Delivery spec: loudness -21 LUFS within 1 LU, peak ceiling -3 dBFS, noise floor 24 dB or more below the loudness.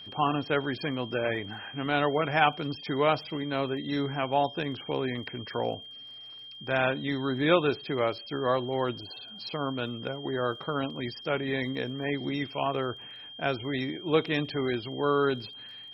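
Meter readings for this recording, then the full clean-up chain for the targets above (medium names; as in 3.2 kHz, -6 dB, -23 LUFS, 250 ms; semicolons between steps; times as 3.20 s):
tick rate 28 per s; steady tone 3.2 kHz; tone level -43 dBFS; loudness -29.5 LUFS; peak level -8.0 dBFS; loudness target -21.0 LUFS
-> de-click; band-stop 3.2 kHz, Q 30; trim +8.5 dB; peak limiter -3 dBFS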